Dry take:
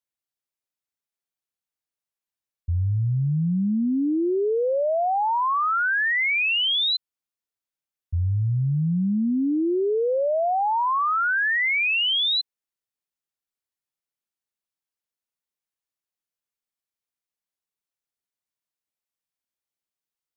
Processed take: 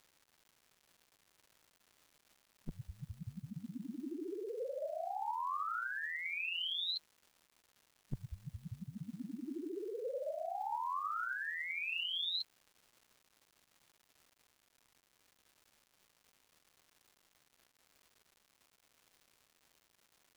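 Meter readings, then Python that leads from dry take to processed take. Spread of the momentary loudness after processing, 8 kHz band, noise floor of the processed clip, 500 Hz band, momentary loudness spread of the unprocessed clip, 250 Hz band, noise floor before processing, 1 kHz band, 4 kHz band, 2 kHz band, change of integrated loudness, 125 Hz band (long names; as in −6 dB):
14 LU, can't be measured, −76 dBFS, −18.5 dB, 5 LU, −22.0 dB, below −85 dBFS, −16.5 dB, −15.5 dB, −18.0 dB, −18.0 dB, −25.0 dB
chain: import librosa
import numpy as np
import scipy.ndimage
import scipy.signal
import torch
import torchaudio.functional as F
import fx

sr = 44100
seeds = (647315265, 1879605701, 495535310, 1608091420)

y = fx.spec_gate(x, sr, threshold_db=-20, keep='weak')
y = fx.dmg_crackle(y, sr, seeds[0], per_s=360.0, level_db=-70.0)
y = y * librosa.db_to_amplitude(16.0)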